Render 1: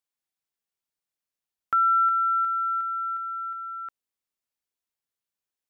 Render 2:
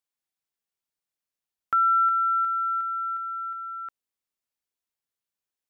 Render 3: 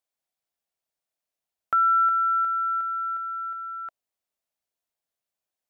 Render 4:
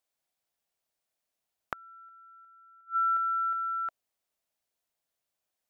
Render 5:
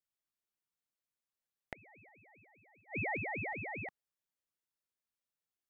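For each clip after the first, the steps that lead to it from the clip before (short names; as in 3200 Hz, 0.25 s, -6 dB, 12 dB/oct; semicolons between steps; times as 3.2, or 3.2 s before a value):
nothing audible
bell 660 Hz +9.5 dB 0.55 oct
flipped gate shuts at -24 dBFS, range -34 dB; gain +2.5 dB
ring modulator with a swept carrier 870 Hz, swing 45%, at 5 Hz; gain -7 dB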